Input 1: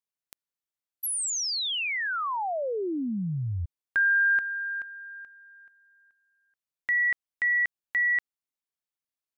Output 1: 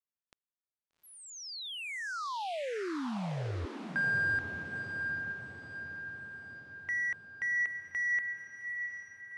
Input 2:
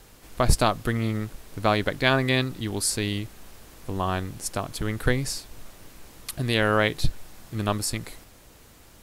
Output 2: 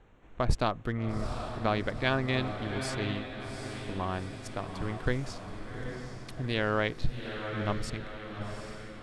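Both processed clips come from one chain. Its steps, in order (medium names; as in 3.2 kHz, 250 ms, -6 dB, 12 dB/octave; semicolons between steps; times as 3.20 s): local Wiener filter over 9 samples; distance through air 90 m; on a send: echo that smears into a reverb 786 ms, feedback 54%, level -7 dB; on the sum: trim -6.5 dB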